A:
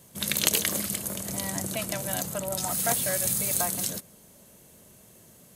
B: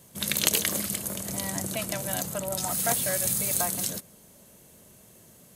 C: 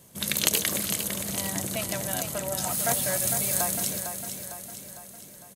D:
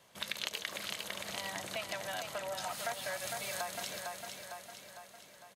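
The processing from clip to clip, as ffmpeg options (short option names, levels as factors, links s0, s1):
-af anull
-af "aecho=1:1:454|908|1362|1816|2270|2724:0.398|0.215|0.116|0.0627|0.0339|0.0183"
-filter_complex "[0:a]acrossover=split=570 4800:gain=0.158 1 0.126[s0][s1][s2];[s0][s1][s2]amix=inputs=3:normalize=0,acompressor=threshold=0.0158:ratio=3"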